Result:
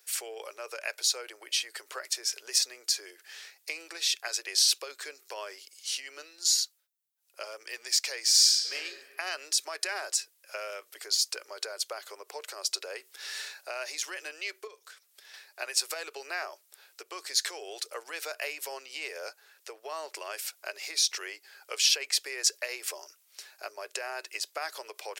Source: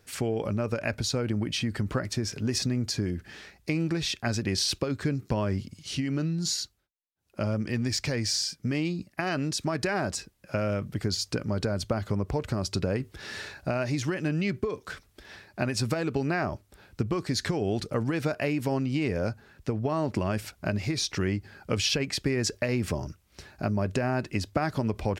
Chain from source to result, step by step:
Butterworth high-pass 390 Hz 48 dB per octave
spectral tilt +4.5 dB per octave
0:08.29–0:08.73: thrown reverb, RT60 1.7 s, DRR −4.5 dB
0:14.67–0:15.34: downward compressor 3 to 1, threshold −45 dBFS, peak gain reduction 11 dB
level −6 dB

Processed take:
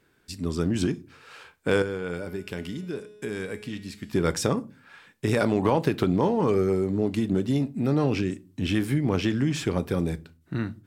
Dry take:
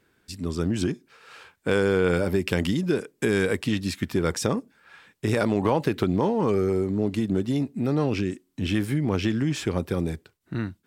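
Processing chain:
0:01.82–0:04.13: tuned comb filter 210 Hz, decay 1.4 s, mix 70%
rectangular room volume 150 cubic metres, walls furnished, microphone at 0.32 metres

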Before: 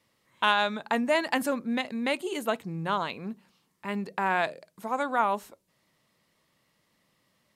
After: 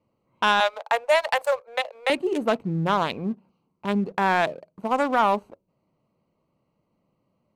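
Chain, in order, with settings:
adaptive Wiener filter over 25 samples
0:00.60–0:02.10: Butterworth high-pass 480 Hz 72 dB per octave
in parallel at +2 dB: brickwall limiter −20 dBFS, peak gain reduction 10 dB
on the sum: leveller curve on the samples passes 1
level −2 dB

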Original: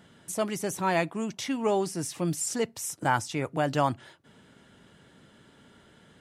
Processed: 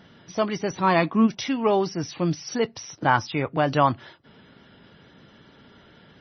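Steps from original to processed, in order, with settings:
dynamic equaliser 1,100 Hz, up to +5 dB, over −46 dBFS, Q 6.1
0:00.82–0:01.26: hollow resonant body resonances 240/1,100 Hz, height 9 dB → 13 dB, ringing for 50 ms
level +5 dB
MP3 24 kbit/s 24,000 Hz

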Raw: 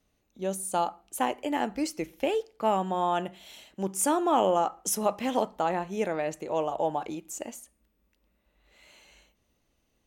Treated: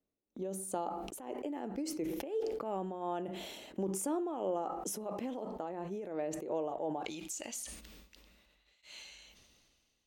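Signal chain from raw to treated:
parametric band 360 Hz +13.5 dB 2.2 octaves, from 0:07.05 4,400 Hz
downward compressor 3 to 1, threshold −33 dBFS, peak gain reduction 17 dB
amplitude tremolo 2.9 Hz, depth 85%
noise gate −60 dBFS, range −18 dB
level that may fall only so fast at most 30 dB per second
level −3.5 dB

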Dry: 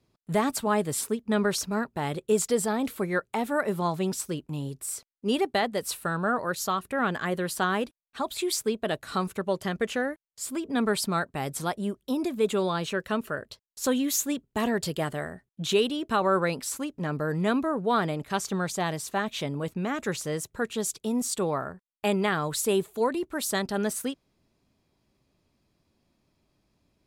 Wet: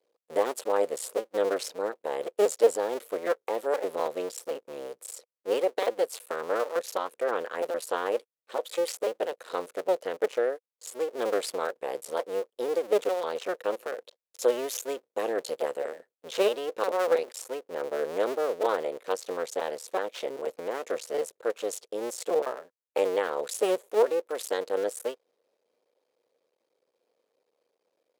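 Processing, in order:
sub-harmonics by changed cycles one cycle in 2, muted
high-pass with resonance 510 Hz, resonance Q 6
speed change −4%
level −4.5 dB

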